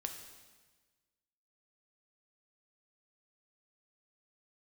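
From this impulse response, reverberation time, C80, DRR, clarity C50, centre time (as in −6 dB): 1.3 s, 8.5 dB, 4.0 dB, 7.0 dB, 29 ms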